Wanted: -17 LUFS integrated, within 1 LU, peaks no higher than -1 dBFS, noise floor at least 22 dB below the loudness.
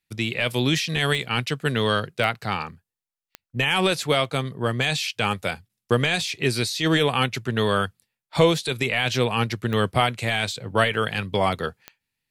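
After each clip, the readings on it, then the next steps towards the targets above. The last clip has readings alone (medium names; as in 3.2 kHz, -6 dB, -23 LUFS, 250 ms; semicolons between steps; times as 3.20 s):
clicks found 5; loudness -23.5 LUFS; peak level -4.0 dBFS; loudness target -17.0 LUFS
-> de-click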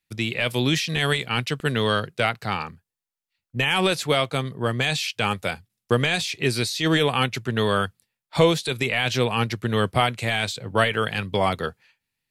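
clicks found 0; loudness -23.5 LUFS; peak level -4.0 dBFS; loudness target -17.0 LUFS
-> trim +6.5 dB; peak limiter -1 dBFS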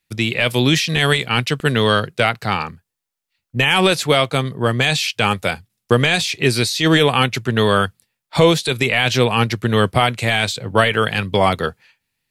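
loudness -17.0 LUFS; peak level -1.0 dBFS; noise floor -81 dBFS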